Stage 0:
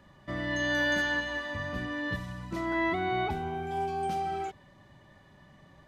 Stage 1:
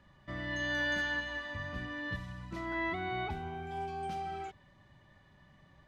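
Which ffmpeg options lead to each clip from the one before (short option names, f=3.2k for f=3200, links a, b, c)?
-af "lowpass=f=3.4k:p=1,equalizer=f=410:w=0.36:g=-7,volume=-1dB"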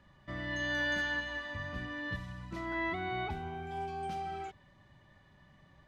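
-af anull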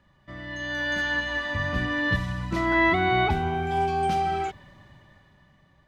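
-af "dynaudnorm=f=280:g=9:m=14dB"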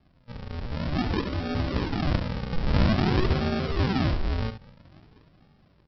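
-af "aresample=11025,acrusher=samples=22:mix=1:aa=0.000001:lfo=1:lforange=22:lforate=0.5,aresample=44100,aecho=1:1:70:0.299"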